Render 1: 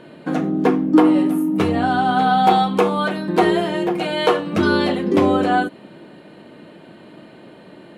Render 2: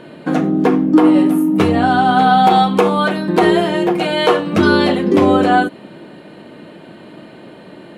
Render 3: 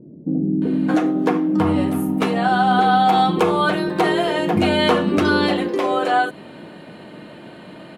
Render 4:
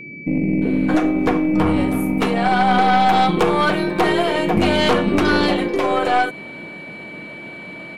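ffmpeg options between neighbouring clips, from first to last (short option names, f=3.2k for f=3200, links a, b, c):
-af "alimiter=level_in=6dB:limit=-1dB:release=50:level=0:latency=1,volume=-1dB"
-filter_complex "[0:a]acompressor=threshold=-14dB:ratio=2,acrossover=split=360[a][b];[b]adelay=620[c];[a][c]amix=inputs=2:normalize=0"
-af "aeval=exprs='val(0)+0.0178*sin(2*PI*2300*n/s)':c=same,aeval=exprs='0.708*(cos(1*acos(clip(val(0)/0.708,-1,1)))-cos(1*PI/2))+0.158*(cos(4*acos(clip(val(0)/0.708,-1,1)))-cos(4*PI/2))+0.224*(cos(5*acos(clip(val(0)/0.708,-1,1)))-cos(5*PI/2))+0.0794*(cos(7*acos(clip(val(0)/0.708,-1,1)))-cos(7*PI/2))':c=same,volume=-4dB"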